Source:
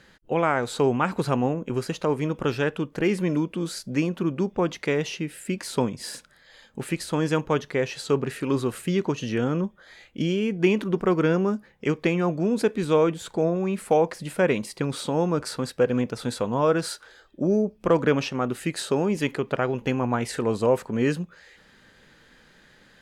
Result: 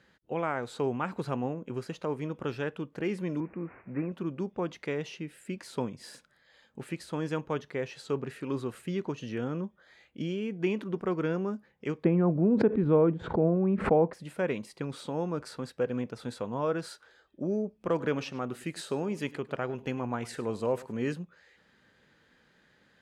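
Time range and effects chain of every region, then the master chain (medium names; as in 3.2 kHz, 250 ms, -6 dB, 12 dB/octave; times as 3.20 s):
3.40–4.12 s: one-bit delta coder 32 kbps, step -39.5 dBFS + steep low-pass 2.5 kHz 96 dB/octave
12.04–14.13 s: low-pass 1.6 kHz + bass shelf 480 Hz +10.5 dB + swell ahead of each attack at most 110 dB/s
17.89–21.14 s: treble shelf 4.5 kHz +5 dB + delay 103 ms -19 dB
whole clip: high-pass 60 Hz; treble shelf 4.8 kHz -7 dB; trim -8.5 dB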